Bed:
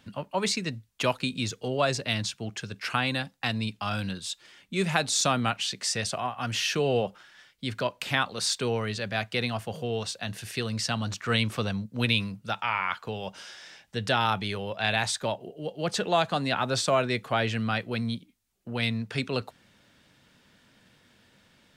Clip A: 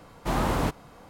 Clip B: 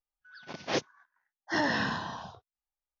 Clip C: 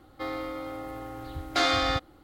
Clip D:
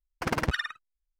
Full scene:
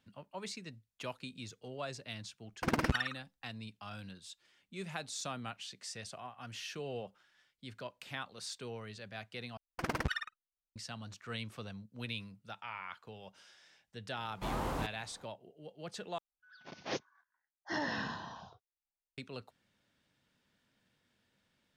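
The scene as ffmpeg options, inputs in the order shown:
ffmpeg -i bed.wav -i cue0.wav -i cue1.wav -i cue2.wav -i cue3.wav -filter_complex "[4:a]asplit=2[link_01][link_02];[0:a]volume=-16dB[link_03];[link_01]equalizer=frequency=250:width=1.5:gain=5.5[link_04];[link_02]agate=range=-15dB:threshold=-47dB:ratio=16:release=21:detection=peak[link_05];[1:a]equalizer=frequency=910:width_type=o:width=0.77:gain=2.5[link_06];[link_03]asplit=3[link_07][link_08][link_09];[link_07]atrim=end=9.574[link_10];[link_05]atrim=end=1.19,asetpts=PTS-STARTPTS,volume=-7dB[link_11];[link_08]atrim=start=10.756:end=16.184[link_12];[2:a]atrim=end=3,asetpts=PTS-STARTPTS,volume=-8dB[link_13];[link_09]atrim=start=19.176[link_14];[link_04]atrim=end=1.19,asetpts=PTS-STARTPTS,volume=-4.5dB,afade=type=in:duration=0.004:curve=hsin,afade=type=out:start_time=1.186:duration=0.004:curve=hsin,adelay=2410[link_15];[link_06]atrim=end=1.09,asetpts=PTS-STARTPTS,volume=-11.5dB,afade=type=in:duration=0.004:curve=hsin,afade=type=out:start_time=1.086:duration=0.004:curve=hsin,adelay=14160[link_16];[link_10][link_11]acrossfade=duration=0.004:curve1=hsin:curve2=hsin[link_17];[link_17][link_12]acrossfade=duration=0.004:curve1=hsin:curve2=hsin[link_18];[link_18][link_13]acrossfade=duration=0.004:curve1=hsin:curve2=hsin[link_19];[link_19][link_14]acrossfade=duration=0.004:curve1=hsin:curve2=hsin[link_20];[link_20][link_15][link_16]amix=inputs=3:normalize=0" out.wav

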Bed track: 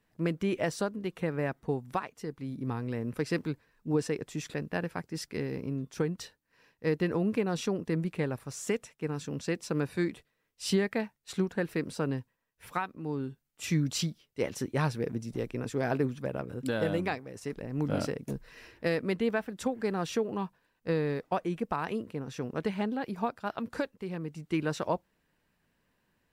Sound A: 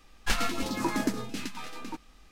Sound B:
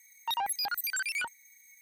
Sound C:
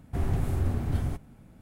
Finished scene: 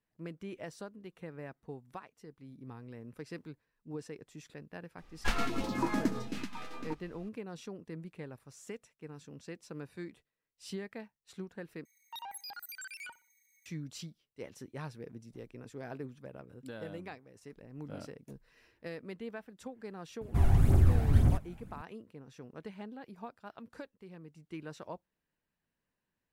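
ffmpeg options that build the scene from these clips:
ffmpeg -i bed.wav -i cue0.wav -i cue1.wav -i cue2.wav -filter_complex "[0:a]volume=-13.5dB[link_01];[1:a]highshelf=frequency=3100:gain=-9.5[link_02];[2:a]asplit=2[link_03][link_04];[link_04]adelay=61,lowpass=frequency=3300:poles=1,volume=-18dB,asplit=2[link_05][link_06];[link_06]adelay=61,lowpass=frequency=3300:poles=1,volume=0.33,asplit=2[link_07][link_08];[link_08]adelay=61,lowpass=frequency=3300:poles=1,volume=0.33[link_09];[link_03][link_05][link_07][link_09]amix=inputs=4:normalize=0[link_10];[3:a]aphaser=in_gain=1:out_gain=1:delay=1.5:decay=0.5:speed=1.9:type=triangular[link_11];[link_01]asplit=2[link_12][link_13];[link_12]atrim=end=11.854[link_14];[link_10]atrim=end=1.81,asetpts=PTS-STARTPTS,volume=-13dB[link_15];[link_13]atrim=start=13.656[link_16];[link_02]atrim=end=2.31,asetpts=PTS-STARTPTS,volume=-2dB,afade=type=in:duration=0.004:curve=hsin,afade=type=out:start_time=2.306:duration=0.004:curve=hsin,adelay=4980[link_17];[link_11]atrim=end=1.61,asetpts=PTS-STARTPTS,volume=-1dB,afade=type=in:duration=0.004:curve=hsin,afade=type=out:start_time=1.606:duration=0.004:curve=hsin,adelay=20210[link_18];[link_14][link_15]acrossfade=duration=0.004:curve1=hsin:curve2=hsin[link_19];[link_19][link_16]acrossfade=duration=0.004:curve1=hsin:curve2=hsin[link_20];[link_20][link_17][link_18]amix=inputs=3:normalize=0" out.wav

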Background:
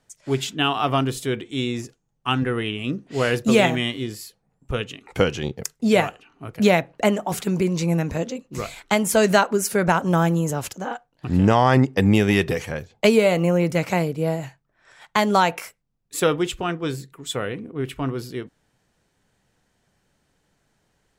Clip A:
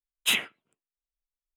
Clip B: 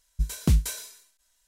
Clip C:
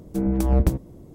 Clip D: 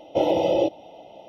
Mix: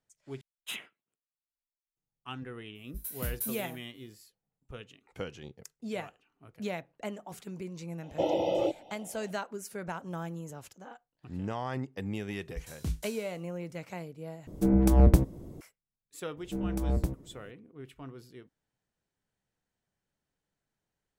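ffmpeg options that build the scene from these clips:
ffmpeg -i bed.wav -i cue0.wav -i cue1.wav -i cue2.wav -i cue3.wav -filter_complex "[2:a]asplit=2[link_01][link_02];[3:a]asplit=2[link_03][link_04];[0:a]volume=-19dB[link_05];[link_01]aexciter=amount=14.2:drive=3.1:freq=10000[link_06];[link_02]asplit=2[link_07][link_08];[link_08]adelay=30,volume=-7dB[link_09];[link_07][link_09]amix=inputs=2:normalize=0[link_10];[link_05]asplit=3[link_11][link_12][link_13];[link_11]atrim=end=0.414[link_14];[1:a]atrim=end=1.56,asetpts=PTS-STARTPTS,volume=-15dB[link_15];[link_12]atrim=start=1.966:end=14.474[link_16];[link_03]atrim=end=1.14,asetpts=PTS-STARTPTS,volume=-0.5dB[link_17];[link_13]atrim=start=15.606[link_18];[link_06]atrim=end=1.47,asetpts=PTS-STARTPTS,volume=-16.5dB,afade=type=in:duration=0.004:curve=hsin,afade=type=out:start_time=1.466:duration=0.004:curve=hsin,adelay=2750[link_19];[4:a]atrim=end=1.28,asetpts=PTS-STARTPTS,volume=-7.5dB,afade=type=in:duration=0.004:curve=hsin,afade=type=out:start_time=1.276:duration=0.004:curve=hsin,adelay=8030[link_20];[link_10]atrim=end=1.47,asetpts=PTS-STARTPTS,volume=-13.5dB,afade=type=in:duration=0.004:curve=hsin,afade=type=out:start_time=1.466:duration=0.004:curve=hsin,adelay=12370[link_21];[link_04]atrim=end=1.14,asetpts=PTS-STARTPTS,volume=-10dB,afade=type=in:duration=0.004:curve=hsin,afade=type=out:start_time=1.136:duration=0.004:curve=hsin,adelay=16370[link_22];[link_14][link_15]acrossfade=duration=0.004:curve1=hsin:curve2=hsin[link_23];[link_23][link_16]acrossfade=duration=0.004:curve1=hsin:curve2=hsin[link_24];[link_24][link_17]acrossfade=duration=0.004:curve1=hsin:curve2=hsin[link_25];[link_25][link_18]acrossfade=duration=0.004:curve1=hsin:curve2=hsin[link_26];[link_26][link_19][link_20][link_21][link_22]amix=inputs=5:normalize=0" out.wav

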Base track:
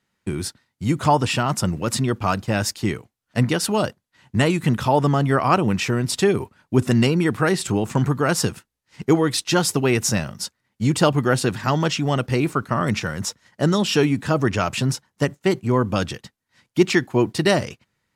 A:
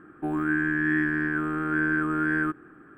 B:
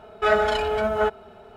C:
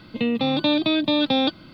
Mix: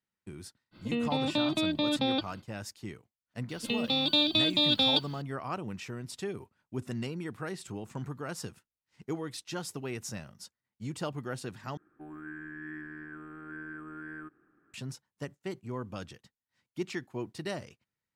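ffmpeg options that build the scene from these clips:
ffmpeg -i bed.wav -i cue0.wav -i cue1.wav -i cue2.wav -filter_complex "[3:a]asplit=2[link_01][link_02];[0:a]volume=-18.5dB[link_03];[link_02]aexciter=amount=4:drive=5.6:freq=2800[link_04];[link_03]asplit=2[link_05][link_06];[link_05]atrim=end=11.774[link_07];[1:a]atrim=end=2.97,asetpts=PTS-STARTPTS,volume=-18dB[link_08];[link_06]atrim=start=14.736[link_09];[link_01]atrim=end=1.73,asetpts=PTS-STARTPTS,volume=-8.5dB,afade=type=in:duration=0.05,afade=type=out:start_time=1.68:duration=0.05,adelay=710[link_10];[link_04]atrim=end=1.73,asetpts=PTS-STARTPTS,volume=-10dB,afade=type=in:duration=0.004:curve=hsin,afade=type=out:start_time=1.726:duration=0.004:curve=hsin,adelay=153909S[link_11];[link_07][link_08]acrossfade=duration=0.004:curve1=hsin:curve2=hsin[link_12];[link_12][link_09]acrossfade=duration=0.004:curve1=hsin:curve2=hsin[link_13];[link_13][link_10][link_11]amix=inputs=3:normalize=0" out.wav

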